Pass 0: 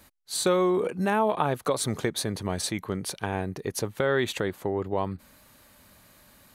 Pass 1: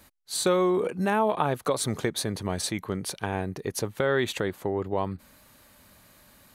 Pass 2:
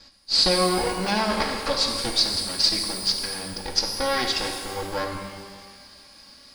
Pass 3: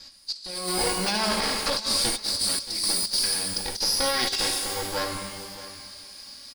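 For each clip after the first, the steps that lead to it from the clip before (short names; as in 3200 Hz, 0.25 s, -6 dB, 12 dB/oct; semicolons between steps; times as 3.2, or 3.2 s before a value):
nothing audible
minimum comb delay 3.6 ms; synth low-pass 4900 Hz, resonance Q 12; shimmer reverb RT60 1.6 s, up +12 st, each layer -8 dB, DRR 3 dB; gain +2 dB
high shelf 3500 Hz +12 dB; negative-ratio compressor -21 dBFS, ratio -0.5; echo 0.627 s -16.5 dB; gain -5 dB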